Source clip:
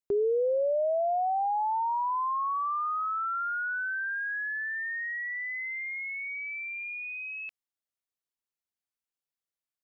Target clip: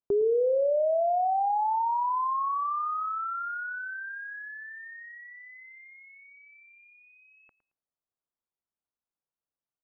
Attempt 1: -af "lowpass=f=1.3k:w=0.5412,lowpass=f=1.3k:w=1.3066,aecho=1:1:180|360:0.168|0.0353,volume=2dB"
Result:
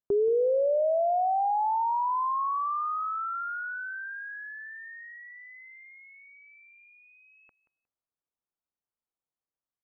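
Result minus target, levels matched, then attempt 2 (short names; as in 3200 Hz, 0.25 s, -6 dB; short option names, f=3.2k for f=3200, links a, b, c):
echo 69 ms late
-af "lowpass=f=1.3k:w=0.5412,lowpass=f=1.3k:w=1.3066,aecho=1:1:111|222:0.168|0.0353,volume=2dB"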